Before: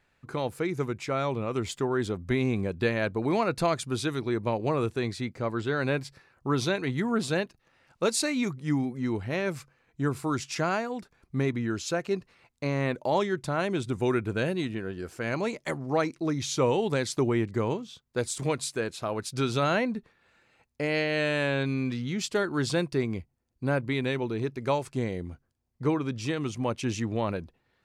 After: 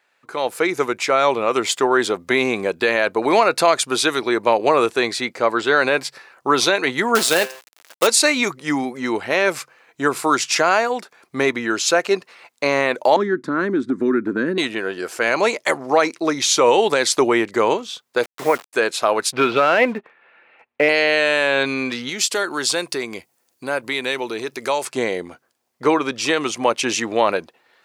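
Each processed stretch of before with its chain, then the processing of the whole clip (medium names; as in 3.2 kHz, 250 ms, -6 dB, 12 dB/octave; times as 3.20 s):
7.15–8.07 s: treble shelf 8.4 kHz +8.5 dB + de-hum 130.6 Hz, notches 23 + companded quantiser 4-bit
13.16–14.58 s: FFT filter 130 Hz 0 dB, 270 Hz +14 dB, 750 Hz -22 dB, 1.1 kHz -7 dB, 1.7 kHz -3 dB, 2.7 kHz -22 dB, 4 kHz -16 dB, 10 kHz -24 dB + compression 2:1, threshold -24 dBFS
18.23–18.73 s: elliptic low-pass 2.1 kHz, stop band 50 dB + bass shelf 70 Hz -7 dB + word length cut 8-bit, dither none
19.32–20.89 s: Chebyshev low-pass 2.6 kHz, order 3 + waveshaping leveller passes 1
22.09–24.85 s: treble shelf 4.6 kHz +10 dB + compression 2:1, threshold -36 dBFS
whole clip: high-pass 500 Hz 12 dB/octave; level rider gain up to 10 dB; loudness maximiser +9.5 dB; trim -3.5 dB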